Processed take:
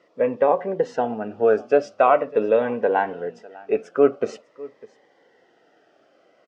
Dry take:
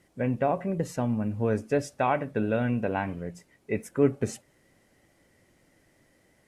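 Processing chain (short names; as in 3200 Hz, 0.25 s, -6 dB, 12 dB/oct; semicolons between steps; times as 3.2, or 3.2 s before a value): speaker cabinet 450–4400 Hz, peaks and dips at 460 Hz +8 dB, 710 Hz +6 dB, 1300 Hz +6 dB, 2200 Hz -8 dB, 4000 Hz -6 dB; echo 0.601 s -22 dB; cascading phaser falling 0.45 Hz; gain +9 dB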